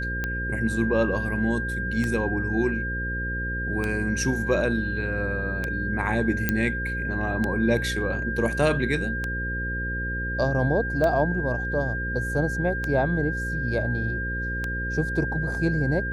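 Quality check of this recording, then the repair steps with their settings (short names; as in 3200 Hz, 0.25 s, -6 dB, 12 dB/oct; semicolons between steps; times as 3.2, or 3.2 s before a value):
buzz 60 Hz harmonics 9 -31 dBFS
tick 33 1/3 rpm -14 dBFS
tone 1600 Hz -29 dBFS
6.49 pop -8 dBFS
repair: de-click; de-hum 60 Hz, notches 9; notch 1600 Hz, Q 30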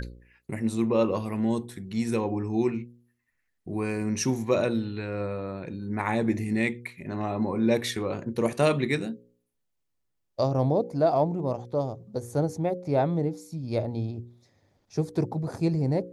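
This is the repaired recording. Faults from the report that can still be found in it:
none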